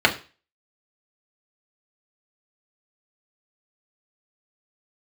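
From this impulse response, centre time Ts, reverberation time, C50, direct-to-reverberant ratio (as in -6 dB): 10 ms, 0.35 s, 14.5 dB, -0.5 dB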